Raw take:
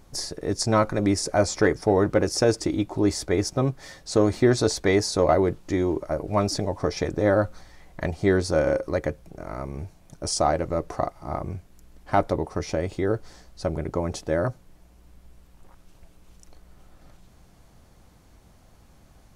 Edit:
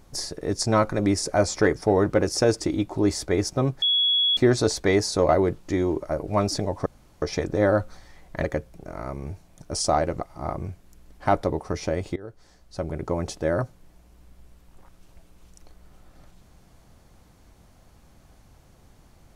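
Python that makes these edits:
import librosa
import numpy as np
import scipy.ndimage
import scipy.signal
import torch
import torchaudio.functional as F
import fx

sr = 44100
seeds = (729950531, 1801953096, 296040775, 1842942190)

y = fx.edit(x, sr, fx.bleep(start_s=3.82, length_s=0.55, hz=3360.0, db=-18.0),
    fx.insert_room_tone(at_s=6.86, length_s=0.36),
    fx.cut(start_s=8.08, length_s=0.88),
    fx.cut(start_s=10.72, length_s=0.34),
    fx.fade_in_from(start_s=13.02, length_s=0.97, floor_db=-21.0), tone=tone)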